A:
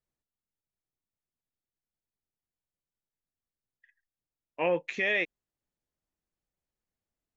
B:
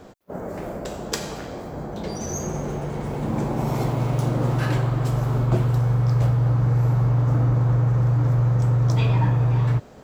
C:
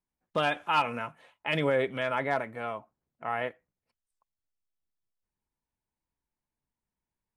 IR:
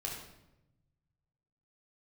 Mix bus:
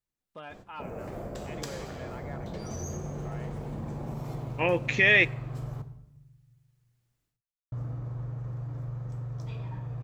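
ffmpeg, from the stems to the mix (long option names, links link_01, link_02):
-filter_complex "[0:a]equalizer=frequency=600:width_type=o:width=1:gain=-6,dynaudnorm=framelen=220:gausssize=3:maxgain=12dB,volume=-2.5dB,asplit=2[link_01][link_02];[link_02]volume=-24dB[link_03];[1:a]lowshelf=frequency=170:gain=6,acompressor=threshold=-26dB:ratio=6,adelay=500,volume=-9.5dB,asplit=3[link_04][link_05][link_06];[link_04]atrim=end=5.82,asetpts=PTS-STARTPTS,afade=type=out:start_time=5.816:duration=0.004:curve=hsin[link_07];[link_05]atrim=start=5.82:end=7.72,asetpts=PTS-STARTPTS,volume=0[link_08];[link_06]atrim=start=7.72,asetpts=PTS-STARTPTS,afade=type=in:duration=0.004:curve=hsin[link_09];[link_07][link_08][link_09]concat=n=3:v=0:a=1,asplit=2[link_10][link_11];[link_11]volume=-7.5dB[link_12];[2:a]acrossover=split=2800[link_13][link_14];[link_14]acompressor=threshold=-44dB:ratio=4:attack=1:release=60[link_15];[link_13][link_15]amix=inputs=2:normalize=0,volume=-16.5dB,asplit=2[link_16][link_17];[link_17]apad=whole_len=324865[link_18];[link_01][link_18]sidechaincompress=threshold=-60dB:ratio=8:attack=16:release=1360[link_19];[3:a]atrim=start_sample=2205[link_20];[link_03][link_12]amix=inputs=2:normalize=0[link_21];[link_21][link_20]afir=irnorm=-1:irlink=0[link_22];[link_19][link_10][link_16][link_22]amix=inputs=4:normalize=0"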